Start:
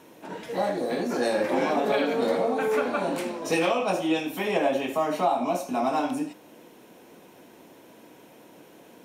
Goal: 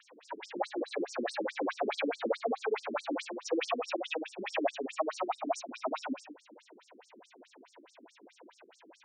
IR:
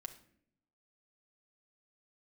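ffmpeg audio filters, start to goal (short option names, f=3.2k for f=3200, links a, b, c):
-filter_complex "[0:a]asplit=2[a][b];[b]highpass=f=720:p=1,volume=14dB,asoftclip=type=tanh:threshold=-11.5dB[c];[a][c]amix=inputs=2:normalize=0,lowpass=f=5.2k:p=1,volume=-6dB,afftfilt=real='re*between(b*sr/1024,260*pow(6600/260,0.5+0.5*sin(2*PI*4.7*pts/sr))/1.41,260*pow(6600/260,0.5+0.5*sin(2*PI*4.7*pts/sr))*1.41)':imag='im*between(b*sr/1024,260*pow(6600/260,0.5+0.5*sin(2*PI*4.7*pts/sr))/1.41,260*pow(6600/260,0.5+0.5*sin(2*PI*4.7*pts/sr))*1.41)':win_size=1024:overlap=0.75,volume=-4dB"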